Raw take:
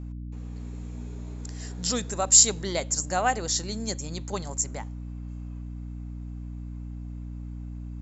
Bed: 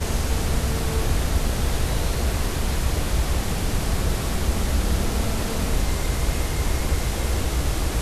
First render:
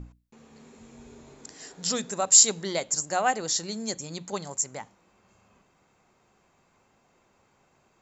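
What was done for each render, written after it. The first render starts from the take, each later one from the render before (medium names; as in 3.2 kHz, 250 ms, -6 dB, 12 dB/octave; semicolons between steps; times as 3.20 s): hum notches 60/120/180/240/300 Hz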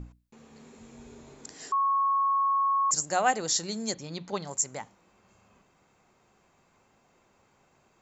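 1.72–2.91 s: bleep 1.1 kHz -22 dBFS; 3.94–4.48 s: low-pass 5 kHz 24 dB/octave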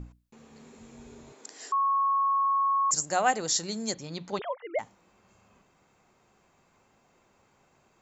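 1.32–2.45 s: high-pass 360 Hz; 4.39–4.79 s: formants replaced by sine waves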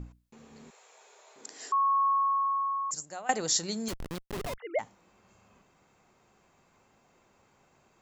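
0.70–1.36 s: inverse Chebyshev high-pass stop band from 220 Hz, stop band 50 dB; 2.07–3.29 s: fade out, to -19.5 dB; 3.88–4.58 s: Schmitt trigger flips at -34 dBFS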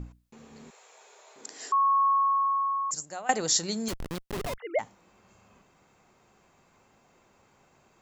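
trim +2.5 dB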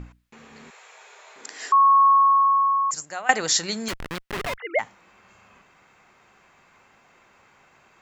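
peaking EQ 1.9 kHz +11.5 dB 2.2 oct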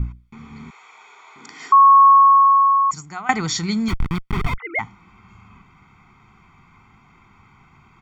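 tone controls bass +12 dB, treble -9 dB; comb 0.9 ms, depth 91%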